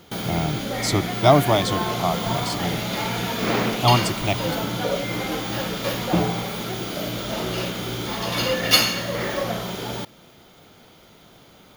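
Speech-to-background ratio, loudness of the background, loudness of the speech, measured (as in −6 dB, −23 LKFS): 1.5 dB, −24.5 LKFS, −23.0 LKFS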